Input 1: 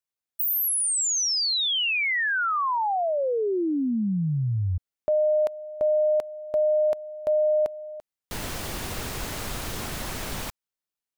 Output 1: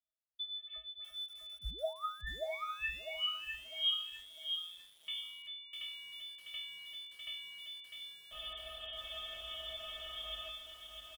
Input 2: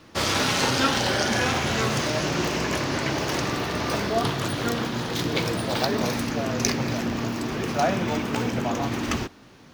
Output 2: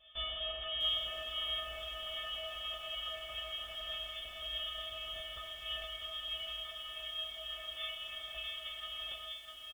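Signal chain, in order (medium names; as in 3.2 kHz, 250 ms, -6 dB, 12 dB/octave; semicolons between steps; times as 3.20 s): comb filter that takes the minimum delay 0.35 ms; dynamic bell 940 Hz, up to -5 dB, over -53 dBFS, Q 7.9; compression 6:1, threshold -30 dBFS; inharmonic resonator 260 Hz, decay 0.73 s, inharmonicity 0.03; echo from a far wall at 230 m, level -24 dB; frequency inversion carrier 3.5 kHz; bit-crushed delay 651 ms, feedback 35%, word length 11-bit, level -5.5 dB; trim +9.5 dB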